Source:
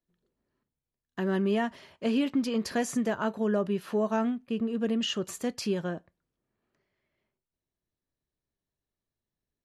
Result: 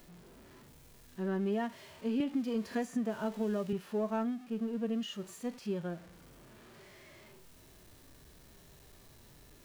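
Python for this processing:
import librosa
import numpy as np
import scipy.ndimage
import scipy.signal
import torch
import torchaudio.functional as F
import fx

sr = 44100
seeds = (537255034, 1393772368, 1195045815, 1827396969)

y = x + 0.5 * 10.0 ** (-39.0 / 20.0) * np.sign(x)
y = fx.hpss(y, sr, part='percussive', gain_db=-16)
y = fx.band_squash(y, sr, depth_pct=100, at=(2.2, 3.73))
y = y * librosa.db_to_amplitude(-6.5)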